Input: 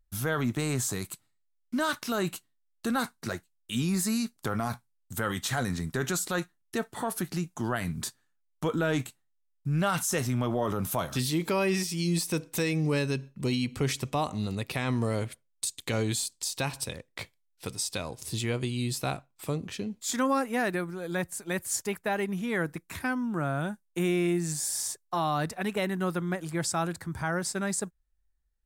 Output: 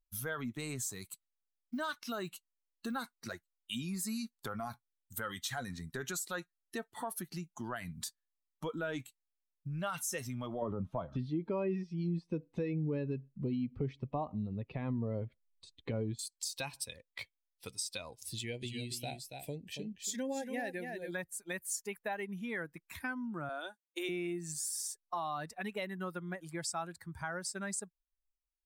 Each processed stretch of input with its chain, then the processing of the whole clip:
0:00.91–0:02.98: high-shelf EQ 11,000 Hz −4 dB + floating-point word with a short mantissa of 4 bits
0:10.62–0:16.19: low-pass filter 4,100 Hz + tilt shelving filter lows +8.5 dB, about 1,200 Hz
0:18.34–0:21.11: Butterworth band-reject 1,200 Hz, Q 1.6 + single-tap delay 281 ms −6.5 dB
0:23.49–0:24.09: Butterworth high-pass 280 Hz + parametric band 4,100 Hz +8 dB 0.98 octaves
whole clip: spectral dynamics exaggerated over time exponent 1.5; downward compressor 2.5 to 1, threshold −39 dBFS; parametric band 73 Hz −4.5 dB 2.3 octaves; level +1.5 dB

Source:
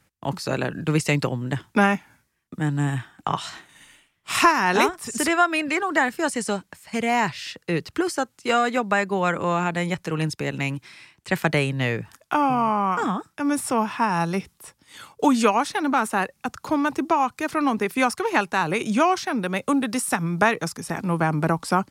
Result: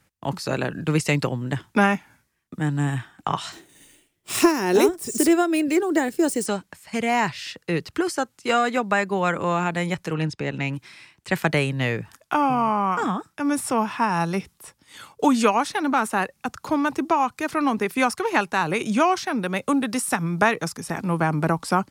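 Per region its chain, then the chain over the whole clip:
0:03.52–0:06.46: running median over 3 samples + drawn EQ curve 230 Hz 0 dB, 350 Hz +9 dB, 1,100 Hz −10 dB, 3,000 Hz −5 dB, 12,000 Hz +8 dB
0:10.13–0:10.73: high-frequency loss of the air 84 metres + notch filter 1,100 Hz, Q 22
whole clip: no processing

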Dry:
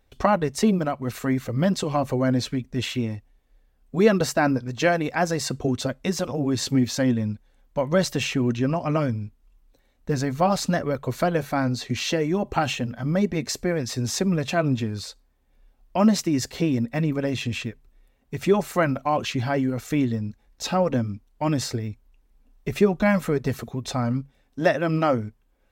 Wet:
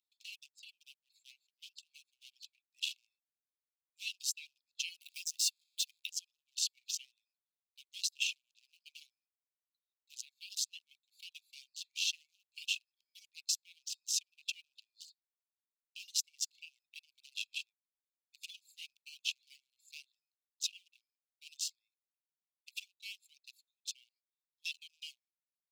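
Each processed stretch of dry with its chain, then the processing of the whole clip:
0:00.46–0:02.66: de-essing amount 50% + spectral tilt −3 dB per octave
0:05.01–0:06.11: converter with a step at zero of −29.5 dBFS + high-pass filter 1,300 Hz 24 dB per octave
whole clip: adaptive Wiener filter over 15 samples; Butterworth high-pass 2,600 Hz 96 dB per octave; reverb reduction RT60 1.6 s; level −2 dB

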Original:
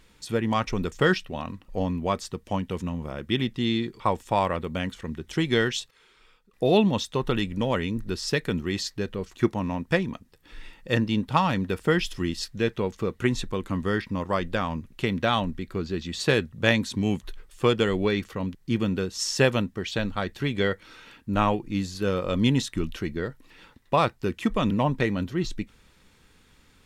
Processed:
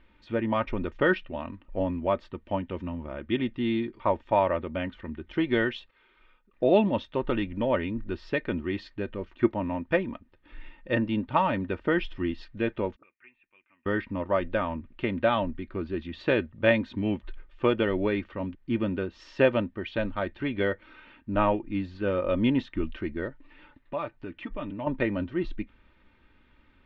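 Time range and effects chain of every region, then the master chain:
0:12.96–0:13.86: de-essing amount 100% + high-frequency loss of the air 430 metres + envelope filter 220–2,500 Hz, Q 10, up, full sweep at −28.5 dBFS
0:23.29–0:24.87: comb filter 6.8 ms, depth 45% + downward compressor 2 to 1, threshold −36 dBFS
whole clip: low-pass filter 2,900 Hz 24 dB per octave; dynamic equaliser 540 Hz, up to +5 dB, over −35 dBFS, Q 1.7; comb filter 3.3 ms, depth 52%; level −3.5 dB

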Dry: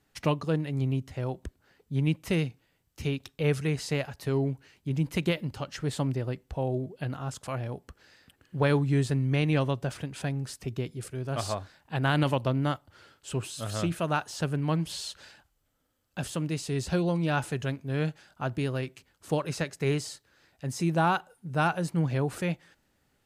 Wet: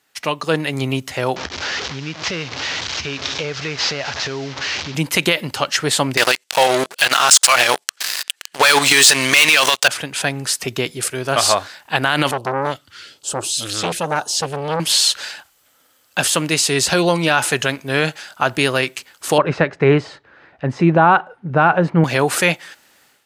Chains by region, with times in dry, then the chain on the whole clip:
0:01.36–0:04.95: linear delta modulator 32 kbit/s, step −37.5 dBFS + parametric band 78 Hz +13 dB 0.69 octaves + downward compressor 4 to 1, threshold −35 dBFS
0:06.17–0:09.88: meter weighting curve ITU-R 468 + output level in coarse steps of 9 dB + leveller curve on the samples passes 5
0:12.31–0:14.80: all-pass phaser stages 2, 1.2 Hz, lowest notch 660–2,200 Hz + high-shelf EQ 9,200 Hz −10.5 dB + saturating transformer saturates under 920 Hz
0:19.38–0:22.04: low-pass filter 2,000 Hz + spectral tilt −2.5 dB per octave
whole clip: high-pass filter 1,200 Hz 6 dB per octave; automatic gain control gain up to 12 dB; boost into a limiter +12 dB; level −1 dB

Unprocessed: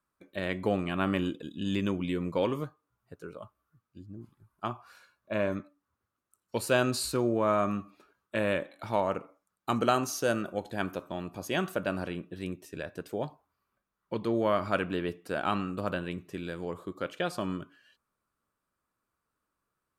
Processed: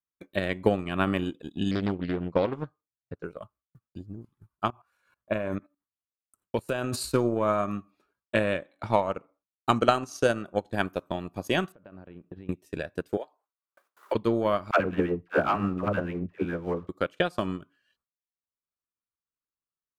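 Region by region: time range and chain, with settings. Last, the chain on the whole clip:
0:01.71–0:03.25: high-frequency loss of the air 150 metres + highs frequency-modulated by the lows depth 0.41 ms
0:04.70–0:06.96: transient designer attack +3 dB, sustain +8 dB + parametric band 4,700 Hz −8.5 dB 0.64 octaves + output level in coarse steps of 16 dB
0:08.37–0:10.74: low-pass filter 9,500 Hz + one half of a high-frequency compander decoder only
0:11.72–0:12.49: downward compressor 8 to 1, threshold −42 dBFS + head-to-tape spacing loss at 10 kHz 34 dB
0:13.17–0:14.15: high-pass filter 400 Hz 24 dB per octave + multiband upward and downward compressor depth 100%
0:14.71–0:16.89: low-pass filter 2,400 Hz 24 dB per octave + leveller curve on the samples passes 1 + all-pass dispersion lows, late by 94 ms, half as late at 480 Hz
whole clip: noise gate with hold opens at −58 dBFS; low-shelf EQ 120 Hz +4.5 dB; transient designer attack +8 dB, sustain −10 dB

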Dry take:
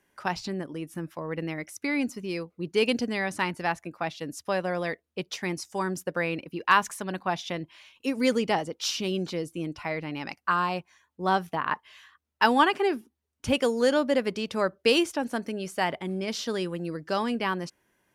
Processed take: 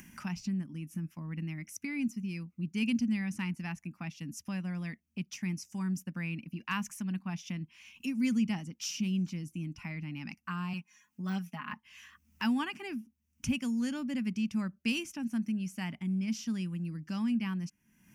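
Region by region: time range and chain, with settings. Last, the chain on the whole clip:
0:10.73–0:11.73: de-essing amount 80% + high-pass filter 420 Hz 6 dB per octave + comb filter 4.8 ms, depth 100%
whole clip: drawn EQ curve 110 Hz 0 dB, 220 Hz +8 dB, 460 Hz −25 dB, 870 Hz −14 dB, 1,700 Hz −10 dB, 2,600 Hz −2 dB, 3,900 Hz −16 dB, 5,800 Hz −2 dB, 8,600 Hz −9 dB; upward compression, threshold −31 dBFS; high-shelf EQ 11,000 Hz +11 dB; level −4.5 dB

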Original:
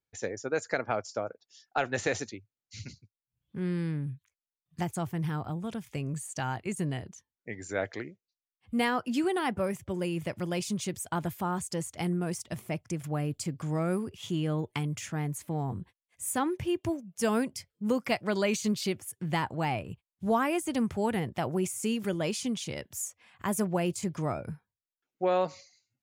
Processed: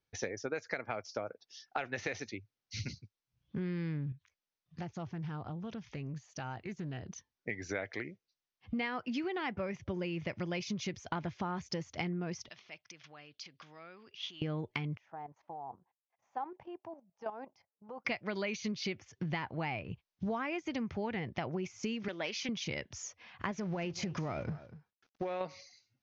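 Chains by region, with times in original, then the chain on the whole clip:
0:04.12–0:07.08: downward compressor 2 to 1, threshold −52 dBFS + bad sample-rate conversion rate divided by 2×, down filtered, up hold + highs frequency-modulated by the lows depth 0.13 ms
0:12.49–0:14.42: downward compressor 4 to 1, threshold −36 dBFS + resonant band-pass 3,700 Hz, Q 1.1 + high-frequency loss of the air 72 metres
0:14.97–0:18.05: resonant band-pass 810 Hz, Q 4 + output level in coarse steps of 12 dB
0:22.08–0:22.49: meter weighting curve A + highs frequency-modulated by the lows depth 0.12 ms
0:23.51–0:25.41: mu-law and A-law mismatch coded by mu + downward compressor, threshold −29 dBFS + single-tap delay 243 ms −20.5 dB
whole clip: Butterworth low-pass 6,300 Hz 96 dB per octave; dynamic equaliser 2,200 Hz, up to +8 dB, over −53 dBFS, Q 2.4; downward compressor 6 to 1, threshold −39 dBFS; level +4.5 dB

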